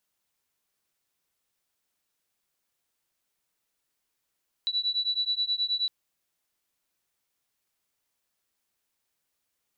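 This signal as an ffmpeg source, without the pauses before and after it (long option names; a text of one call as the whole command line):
ffmpeg -f lavfi -i "aevalsrc='0.0376*(sin(2*PI*3940*t)+sin(2*PI*3949.4*t))':duration=1.21:sample_rate=44100" out.wav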